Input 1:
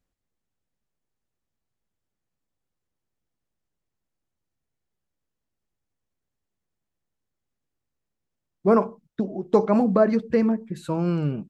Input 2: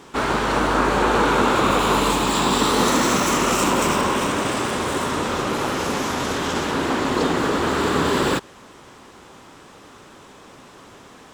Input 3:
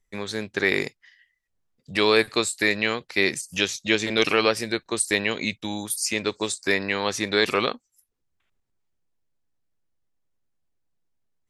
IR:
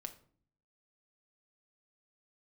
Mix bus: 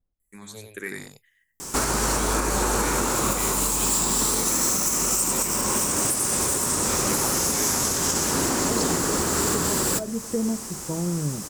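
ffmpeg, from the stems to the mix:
-filter_complex "[0:a]lowpass=1000,volume=-5dB[link_01];[1:a]aexciter=amount=5:drive=9.3:freq=5100,adelay=1600,volume=0dB,asplit=2[link_02][link_03];[link_03]volume=-6.5dB[link_04];[2:a]aexciter=amount=15.1:drive=4.1:freq=7600,asplit=2[link_05][link_06];[link_06]afreqshift=-1.9[link_07];[link_05][link_07]amix=inputs=2:normalize=1,adelay=200,volume=-10.5dB,asplit=2[link_08][link_09];[link_09]volume=-5dB[link_10];[link_01][link_02]amix=inputs=2:normalize=0,acompressor=threshold=-21dB:ratio=6,volume=0dB[link_11];[3:a]atrim=start_sample=2205[link_12];[link_04][link_12]afir=irnorm=-1:irlink=0[link_13];[link_10]aecho=0:1:93:1[link_14];[link_08][link_11][link_13][link_14]amix=inputs=4:normalize=0,lowshelf=frequency=110:gain=10,alimiter=limit=-12.5dB:level=0:latency=1:release=460"

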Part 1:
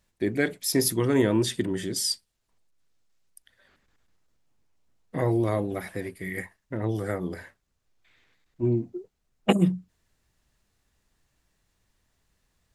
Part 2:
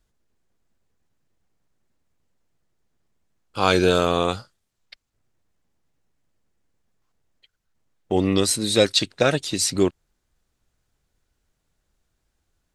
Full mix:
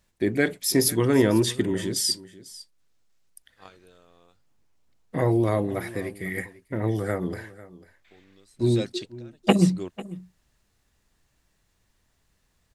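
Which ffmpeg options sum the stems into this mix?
ffmpeg -i stem1.wav -i stem2.wav -filter_complex "[0:a]volume=2.5dB,asplit=3[link_01][link_02][link_03];[link_02]volume=-18.5dB[link_04];[1:a]volume=-15.5dB[link_05];[link_03]apad=whole_len=562106[link_06];[link_05][link_06]sidechaingate=range=-22dB:threshold=-56dB:ratio=16:detection=peak[link_07];[link_04]aecho=0:1:496:1[link_08];[link_01][link_07][link_08]amix=inputs=3:normalize=0" out.wav

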